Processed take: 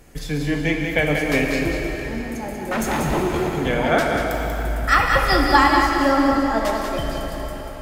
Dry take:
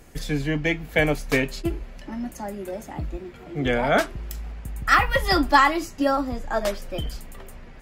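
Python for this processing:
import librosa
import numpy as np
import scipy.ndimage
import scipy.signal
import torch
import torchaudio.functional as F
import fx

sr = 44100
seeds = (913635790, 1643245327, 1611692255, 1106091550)

y = fx.fold_sine(x, sr, drive_db=13, ceiling_db=-20.5, at=(2.71, 3.49))
y = y + 10.0 ** (-6.0 / 20.0) * np.pad(y, (int(189 * sr / 1000.0), 0))[:len(y)]
y = fx.rev_plate(y, sr, seeds[0], rt60_s=4.6, hf_ratio=0.75, predelay_ms=0, drr_db=1.0)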